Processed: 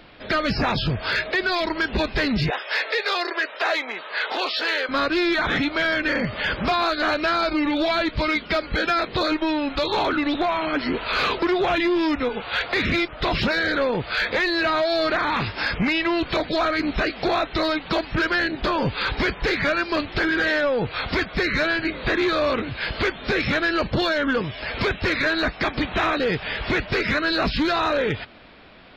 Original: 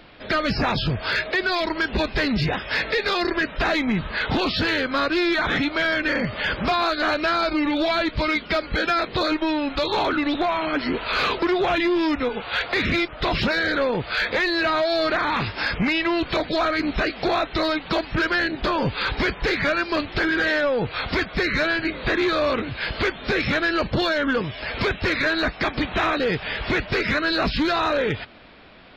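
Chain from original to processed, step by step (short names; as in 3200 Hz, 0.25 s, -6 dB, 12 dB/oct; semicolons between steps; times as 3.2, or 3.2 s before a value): 2.5–4.89 HPF 440 Hz 24 dB/oct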